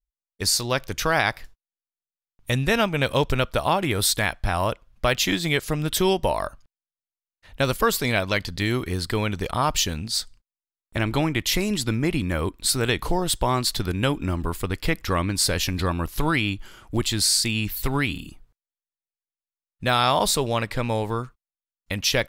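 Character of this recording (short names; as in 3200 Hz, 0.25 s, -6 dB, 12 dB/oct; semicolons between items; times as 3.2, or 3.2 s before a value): noise floor -96 dBFS; spectral tilt -3.5 dB/oct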